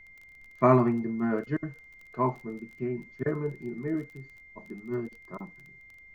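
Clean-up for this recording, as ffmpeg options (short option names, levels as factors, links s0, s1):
-af "adeclick=t=4,bandreject=f=2100:w=30,agate=range=0.0891:threshold=0.00562"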